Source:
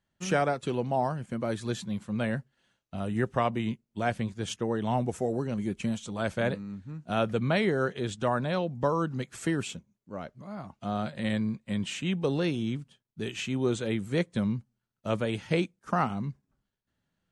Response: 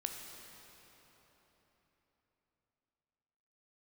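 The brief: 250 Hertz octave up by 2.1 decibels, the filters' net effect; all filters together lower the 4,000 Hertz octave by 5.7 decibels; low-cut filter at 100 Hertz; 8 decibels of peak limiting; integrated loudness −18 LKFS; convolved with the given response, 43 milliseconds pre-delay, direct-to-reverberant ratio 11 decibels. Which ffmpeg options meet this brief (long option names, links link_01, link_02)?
-filter_complex "[0:a]highpass=100,equalizer=frequency=250:width_type=o:gain=3,equalizer=frequency=4000:width_type=o:gain=-8,alimiter=limit=-20.5dB:level=0:latency=1,asplit=2[link_01][link_02];[1:a]atrim=start_sample=2205,adelay=43[link_03];[link_02][link_03]afir=irnorm=-1:irlink=0,volume=-11dB[link_04];[link_01][link_04]amix=inputs=2:normalize=0,volume=14dB"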